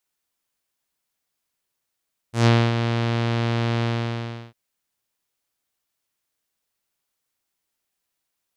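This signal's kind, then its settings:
subtractive voice saw A#2 12 dB per octave, low-pass 3,800 Hz, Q 1.4, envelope 1.5 octaves, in 0.17 s, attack 130 ms, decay 0.26 s, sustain −8 dB, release 0.70 s, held 1.50 s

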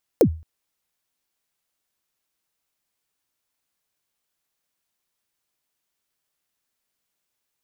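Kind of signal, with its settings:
synth kick length 0.22 s, from 560 Hz, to 80 Hz, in 80 ms, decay 0.36 s, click on, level −7.5 dB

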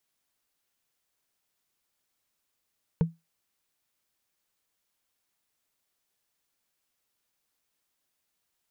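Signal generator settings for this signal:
struck wood, lowest mode 165 Hz, decay 0.20 s, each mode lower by 8.5 dB, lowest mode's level −16 dB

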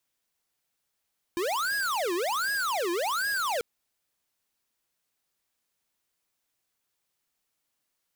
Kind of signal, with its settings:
siren wail 340–1,660 Hz 1.3 per second square −28.5 dBFS 2.24 s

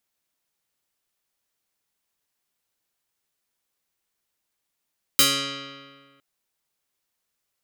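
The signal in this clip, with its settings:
Karplus-Strong string C#3, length 1.01 s, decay 1.73 s, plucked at 0.16, medium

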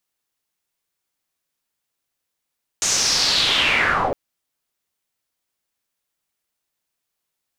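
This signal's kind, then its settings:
filter sweep on noise white, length 1.31 s lowpass, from 6,800 Hz, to 470 Hz, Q 4.2, linear, gain ramp +9 dB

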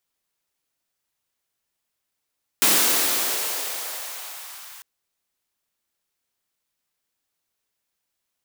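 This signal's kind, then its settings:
filter sweep on noise white, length 2.20 s highpass, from 210 Hz, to 1,100 Hz, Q 1.4, exponential, gain ramp −26.5 dB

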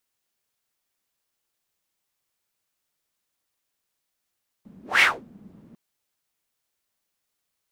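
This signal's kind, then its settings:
pass-by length 1.10 s, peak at 0:00.36, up 0.19 s, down 0.25 s, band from 210 Hz, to 2,300 Hz, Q 5.2, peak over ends 32.5 dB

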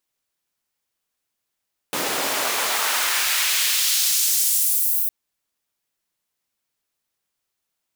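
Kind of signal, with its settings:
filter sweep on noise pink, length 3.16 s highpass, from 300 Hz, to 16,000 Hz, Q 0.9, exponential, gain ramp +13 dB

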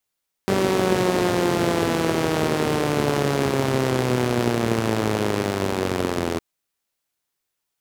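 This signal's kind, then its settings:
pulse-train model of a four-cylinder engine, changing speed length 5.91 s, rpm 5,800, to 2,500, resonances 130/230/360 Hz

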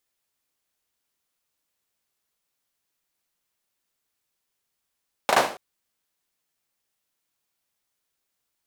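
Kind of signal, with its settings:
synth clap length 0.28 s, bursts 3, apart 37 ms, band 660 Hz, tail 0.41 s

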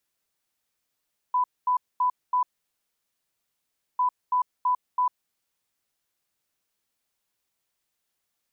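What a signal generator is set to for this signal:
beeps in groups sine 997 Hz, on 0.10 s, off 0.23 s, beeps 4, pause 1.56 s, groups 2, −19.5 dBFS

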